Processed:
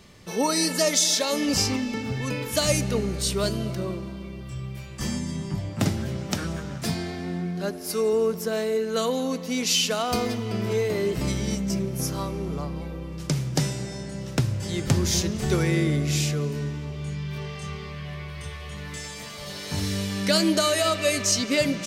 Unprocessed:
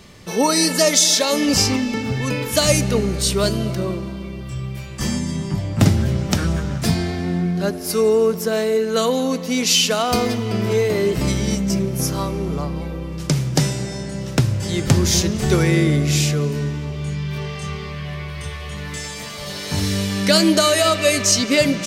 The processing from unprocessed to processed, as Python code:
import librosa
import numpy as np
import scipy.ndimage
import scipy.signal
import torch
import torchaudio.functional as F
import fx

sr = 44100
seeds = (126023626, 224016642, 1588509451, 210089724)

y = fx.highpass(x, sr, hz=160.0, slope=6, at=(5.7, 8.13))
y = y * 10.0 ** (-6.5 / 20.0)